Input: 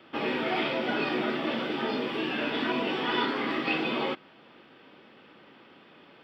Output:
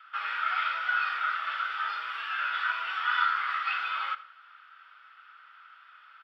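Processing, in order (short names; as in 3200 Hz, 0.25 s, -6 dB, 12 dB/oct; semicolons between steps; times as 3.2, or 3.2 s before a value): ladder high-pass 1300 Hz, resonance 85%; feedback echo 82 ms, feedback 30%, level -16.5 dB; gain +7 dB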